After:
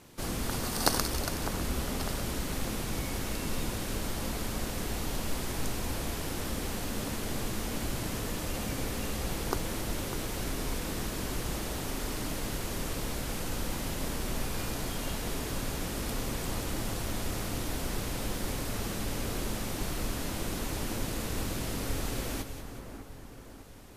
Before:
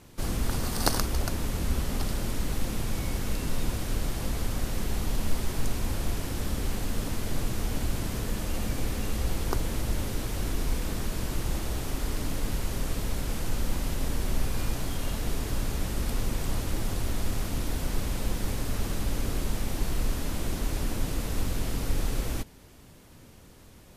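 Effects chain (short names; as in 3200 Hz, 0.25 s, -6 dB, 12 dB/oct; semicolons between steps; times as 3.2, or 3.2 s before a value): low shelf 110 Hz -10 dB; split-band echo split 1900 Hz, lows 0.6 s, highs 0.186 s, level -9.5 dB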